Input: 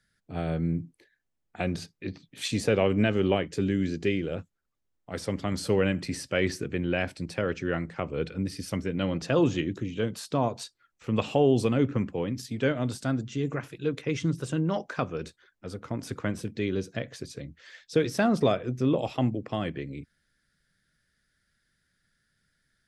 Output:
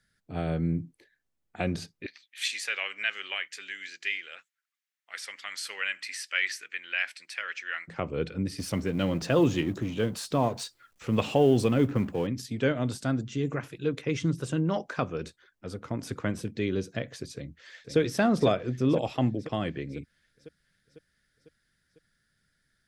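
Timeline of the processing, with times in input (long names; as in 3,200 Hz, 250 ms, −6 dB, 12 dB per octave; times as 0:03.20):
0:02.06–0:07.88: high-pass with resonance 1,900 Hz, resonance Q 1.9
0:08.58–0:12.27: mu-law and A-law mismatch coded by mu
0:17.34–0:17.98: delay throw 500 ms, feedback 60%, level −6 dB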